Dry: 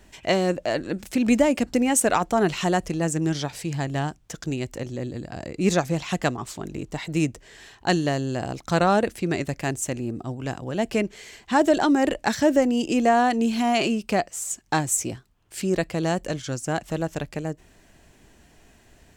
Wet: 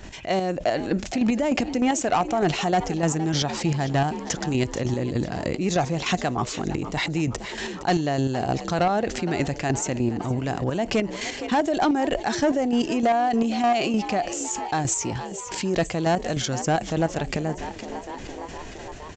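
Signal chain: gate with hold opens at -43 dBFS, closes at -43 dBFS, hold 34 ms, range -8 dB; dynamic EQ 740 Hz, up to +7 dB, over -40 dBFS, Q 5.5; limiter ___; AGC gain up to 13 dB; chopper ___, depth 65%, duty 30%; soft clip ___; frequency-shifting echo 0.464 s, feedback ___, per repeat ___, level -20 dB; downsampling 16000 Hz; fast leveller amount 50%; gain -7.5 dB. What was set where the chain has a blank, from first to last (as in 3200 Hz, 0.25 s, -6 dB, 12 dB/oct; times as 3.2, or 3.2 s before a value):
-10.5 dBFS, 3.3 Hz, -8 dBFS, 58%, +59 Hz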